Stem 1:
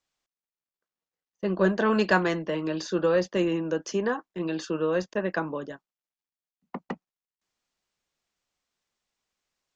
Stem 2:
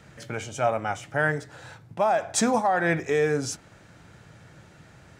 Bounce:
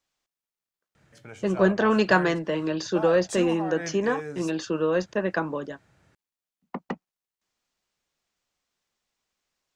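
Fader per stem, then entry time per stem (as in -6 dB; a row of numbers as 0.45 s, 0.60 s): +2.0 dB, -11.5 dB; 0.00 s, 0.95 s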